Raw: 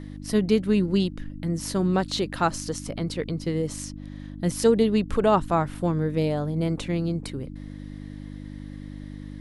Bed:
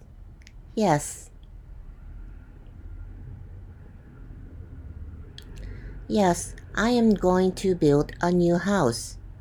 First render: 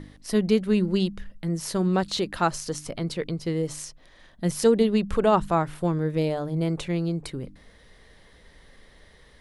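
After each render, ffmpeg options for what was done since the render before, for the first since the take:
-af "bandreject=f=50:t=h:w=4,bandreject=f=100:t=h:w=4,bandreject=f=150:t=h:w=4,bandreject=f=200:t=h:w=4,bandreject=f=250:t=h:w=4,bandreject=f=300:t=h:w=4"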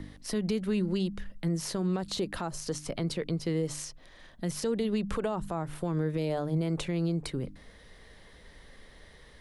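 -filter_complex "[0:a]acrossover=split=150|960|7200[s0][s1][s2][s3];[s0]acompressor=threshold=0.0224:ratio=4[s4];[s1]acompressor=threshold=0.0708:ratio=4[s5];[s2]acompressor=threshold=0.0158:ratio=4[s6];[s3]acompressor=threshold=0.00708:ratio=4[s7];[s4][s5][s6][s7]amix=inputs=4:normalize=0,alimiter=limit=0.0841:level=0:latency=1:release=118"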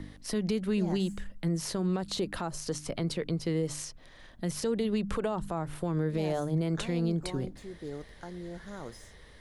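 -filter_complex "[1:a]volume=0.0944[s0];[0:a][s0]amix=inputs=2:normalize=0"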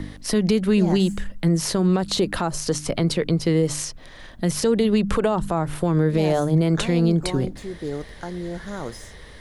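-af "volume=3.35"

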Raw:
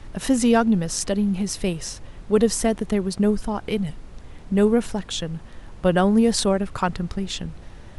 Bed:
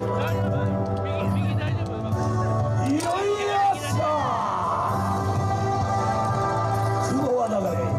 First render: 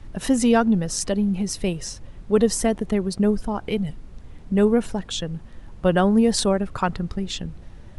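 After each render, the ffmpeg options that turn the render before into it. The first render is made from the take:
-af "afftdn=nr=6:nf=-41"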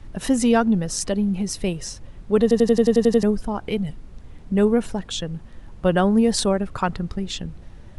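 -filter_complex "[0:a]asplit=10[s0][s1][s2][s3][s4][s5][s6][s7][s8][s9];[s0]atrim=end=2.512[s10];[s1]atrim=start=2.418:end=2.512[s11];[s2]atrim=start=2.418:end=2.512[s12];[s3]atrim=start=2.418:end=2.512[s13];[s4]atrim=start=2.418:end=2.512[s14];[s5]atrim=start=2.418:end=2.512[s15];[s6]atrim=start=2.418:end=2.512[s16];[s7]atrim=start=2.418:end=2.512[s17];[s8]atrim=start=2.418:end=2.512[s18];[s9]atrim=start=3.228[s19];[s10][s11]acrossfade=d=0.004:c1=hsin:c2=hsin[s20];[s20][s12]acrossfade=d=0.004:c1=hsin:c2=hsin[s21];[s21][s13]acrossfade=d=0.004:c1=hsin:c2=hsin[s22];[s22][s14]acrossfade=d=0.004:c1=hsin:c2=hsin[s23];[s23][s15]acrossfade=d=0.004:c1=hsin:c2=hsin[s24];[s24][s16]acrossfade=d=0.004:c1=hsin:c2=hsin[s25];[s25][s17]acrossfade=d=0.004:c1=hsin:c2=hsin[s26];[s26][s18]acrossfade=d=0.004:c1=hsin:c2=hsin[s27];[s27][s19]acrossfade=d=0.004:c1=hsin:c2=hsin"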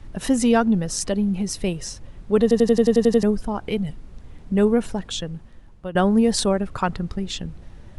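-filter_complex "[0:a]asplit=2[s0][s1];[s0]atrim=end=5.95,asetpts=PTS-STARTPTS,afade=t=out:st=5.12:d=0.83:silence=0.16788[s2];[s1]atrim=start=5.95,asetpts=PTS-STARTPTS,afade=t=in:d=0.004:c=hsin:silence=0.16788[s3];[s2][s3]concat=n=2:v=0:a=1"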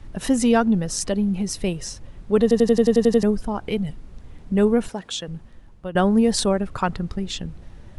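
-filter_complex "[0:a]asettb=1/sr,asplit=3[s0][s1][s2];[s0]atrim=end=4.884[s3];[s1]atrim=start=4.88:end=5.28,asetpts=PTS-STARTPTS,afade=t=in:d=0.004:c=qsin,afade=t=out:st=0.396:d=0.004:c=qsin,highpass=f=330:p=1[s4];[s2]atrim=start=5.276[s5];[s3][s4]acrossfade=d=0.004:c1=hsin:c2=qsin[s6];[s6][s5]acrossfade=d=0.004:c1=qsin:c2=hsin"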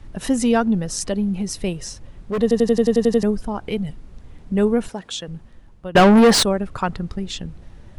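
-filter_complex "[0:a]asplit=3[s0][s1][s2];[s0]afade=t=out:st=1.72:d=0.02[s3];[s1]volume=8.91,asoftclip=hard,volume=0.112,afade=t=in:st=1.72:d=0.02,afade=t=out:st=2.41:d=0.02[s4];[s2]afade=t=in:st=2.41:d=0.02[s5];[s3][s4][s5]amix=inputs=3:normalize=0,asettb=1/sr,asplit=3[s6][s7][s8];[s6]atrim=end=5.954[s9];[s7]atrim=start=5.95:end=6.43,asetpts=PTS-STARTPTS,afade=t=in:d=0.004:c=qsin,afade=t=out:st=0.476:d=0.004:c=qsin,asplit=2[s10][s11];[s11]highpass=f=720:p=1,volume=28.2,asoftclip=type=tanh:threshold=0.668[s12];[s10][s12]amix=inputs=2:normalize=0,lowpass=f=3000:p=1,volume=0.501[s13];[s8]atrim=start=6.426[s14];[s9][s13]acrossfade=d=0.004:c1=hsin:c2=qsin[s15];[s15][s14]acrossfade=d=0.004:c1=qsin:c2=hsin"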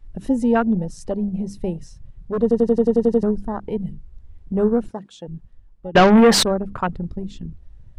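-af "bandreject=f=50:t=h:w=6,bandreject=f=100:t=h:w=6,bandreject=f=150:t=h:w=6,bandreject=f=200:t=h:w=6,afwtdn=0.0355"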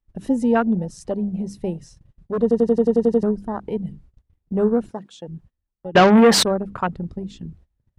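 -af "highpass=f=92:p=1,agate=range=0.0794:threshold=0.00501:ratio=16:detection=peak"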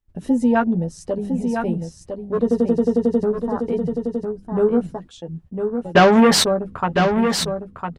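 -filter_complex "[0:a]asplit=2[s0][s1];[s1]adelay=12,volume=0.501[s2];[s0][s2]amix=inputs=2:normalize=0,aecho=1:1:1005:0.501"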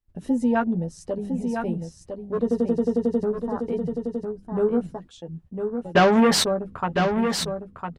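-af "volume=0.596"

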